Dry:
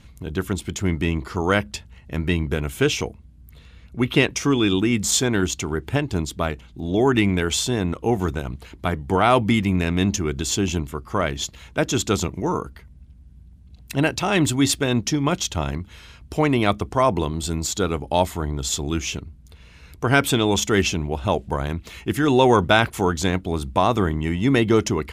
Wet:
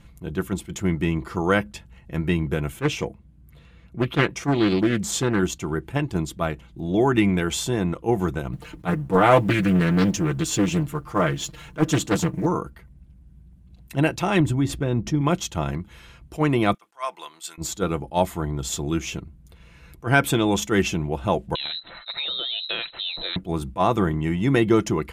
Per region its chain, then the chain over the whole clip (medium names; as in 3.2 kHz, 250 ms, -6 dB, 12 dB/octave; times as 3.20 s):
2.72–5.39 s: high-pass 52 Hz + treble shelf 5.5 kHz -3.5 dB + loudspeaker Doppler distortion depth 0.39 ms
8.52–12.46 s: companding laws mixed up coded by mu + comb 6.6 ms + loudspeaker Doppler distortion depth 0.55 ms
14.40–15.21 s: tilt EQ -2.5 dB/octave + compression 2:1, threshold -20 dBFS
16.74–17.58 s: de-esser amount 35% + high-pass 1.4 kHz
21.55–23.36 s: compression, threshold -20 dBFS + frequency inversion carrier 4 kHz
whole clip: peaking EQ 4.7 kHz -6 dB 1.6 oct; comb 5.9 ms, depth 40%; attacks held to a fixed rise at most 380 dB/s; trim -1 dB